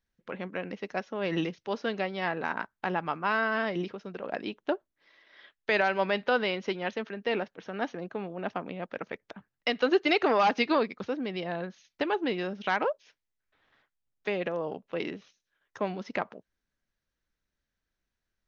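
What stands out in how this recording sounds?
noise floor -86 dBFS; spectral tilt -2.5 dB/oct

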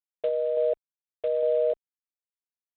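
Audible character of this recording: random-step tremolo; G.726

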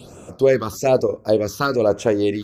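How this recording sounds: phasing stages 6, 1.1 Hz, lowest notch 570–4300 Hz

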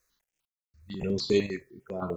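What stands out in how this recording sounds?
chopped level 0.99 Hz, depth 60%, duty 45%; a quantiser's noise floor 12-bit, dither none; notches that jump at a steady rate 10 Hz 840–5500 Hz

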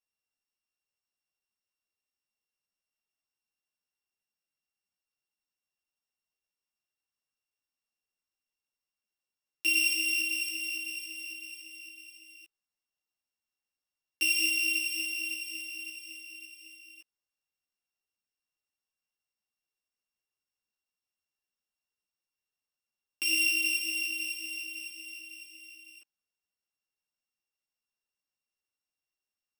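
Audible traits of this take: a buzz of ramps at a fixed pitch in blocks of 16 samples; a shimmering, thickened sound

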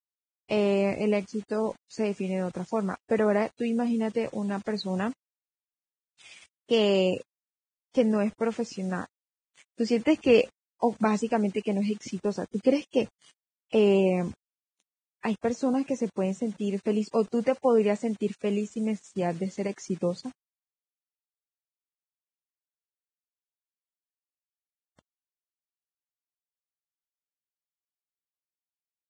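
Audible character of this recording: a quantiser's noise floor 8-bit, dither none; Vorbis

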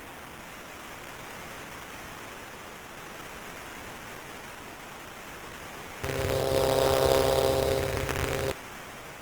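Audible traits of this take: a quantiser's noise floor 8-bit, dither triangular; phasing stages 2, 0.46 Hz, lowest notch 710–5000 Hz; aliases and images of a low sample rate 4400 Hz, jitter 20%; Opus

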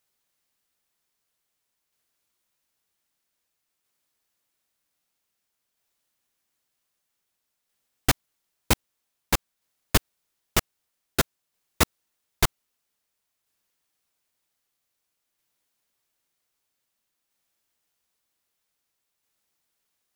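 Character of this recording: tremolo saw down 0.52 Hz, depth 30%

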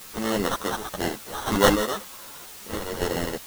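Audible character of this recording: aliases and images of a low sample rate 2400 Hz, jitter 0%; chopped level 1 Hz, depth 60%, duty 75%; a quantiser's noise floor 8-bit, dither triangular; a shimmering, thickened sound

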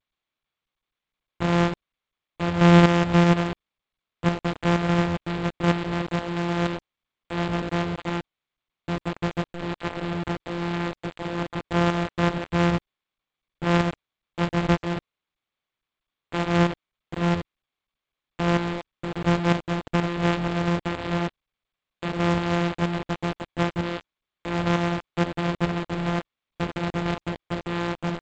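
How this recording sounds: a buzz of ramps at a fixed pitch in blocks of 256 samples; tremolo saw up 2.1 Hz, depth 60%; a quantiser's noise floor 6-bit, dither none; G.722

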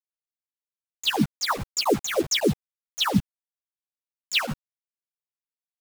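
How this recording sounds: chopped level 7 Hz, depth 65%, duty 60%; phasing stages 8, 1.7 Hz, lowest notch 210–2400 Hz; a quantiser's noise floor 6-bit, dither none; a shimmering, thickened sound

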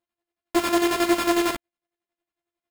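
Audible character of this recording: a buzz of ramps at a fixed pitch in blocks of 128 samples; chopped level 11 Hz, depth 60%, duty 45%; aliases and images of a low sample rate 5900 Hz, jitter 0%; a shimmering, thickened sound

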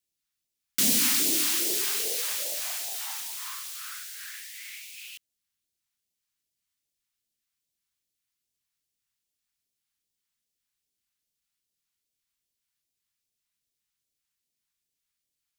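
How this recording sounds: phasing stages 2, 2.5 Hz, lowest notch 460–1200 Hz

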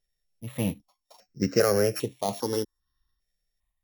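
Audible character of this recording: a buzz of ramps at a fixed pitch in blocks of 8 samples; random-step tremolo; notches that jump at a steady rate 2.5 Hz 280–5200 Hz

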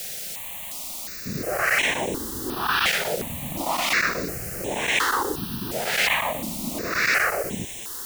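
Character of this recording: chopped level 8.2 Hz, duty 90%; a quantiser's noise floor 6-bit, dither triangular; notches that jump at a steady rate 2.8 Hz 290–4700 Hz

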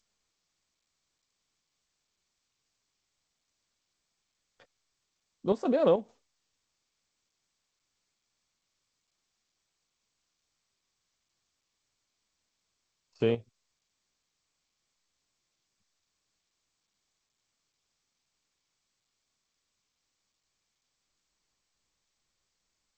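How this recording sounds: chopped level 2.3 Hz, depth 60%, duty 70%; G.722

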